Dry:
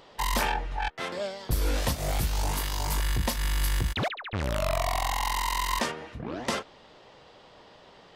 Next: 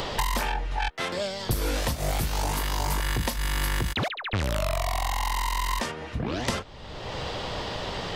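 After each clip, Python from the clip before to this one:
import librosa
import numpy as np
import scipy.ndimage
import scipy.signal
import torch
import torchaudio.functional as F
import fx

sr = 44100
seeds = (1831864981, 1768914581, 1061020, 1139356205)

y = fx.band_squash(x, sr, depth_pct=100)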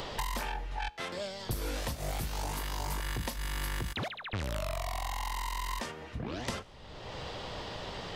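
y = fx.comb_fb(x, sr, f0_hz=56.0, decay_s=1.1, harmonics='all', damping=0.0, mix_pct=30)
y = y * librosa.db_to_amplitude(-5.5)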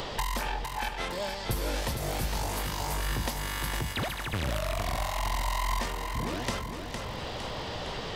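y = fx.echo_feedback(x, sr, ms=459, feedback_pct=56, wet_db=-6.0)
y = y * librosa.db_to_amplitude(3.5)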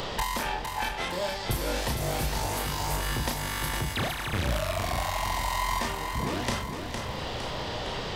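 y = fx.doubler(x, sr, ms=33.0, db=-5.0)
y = y * librosa.db_to_amplitude(1.5)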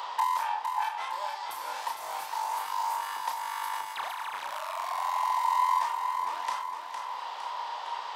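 y = fx.highpass_res(x, sr, hz=950.0, q=6.9)
y = y * librosa.db_to_amplitude(-9.0)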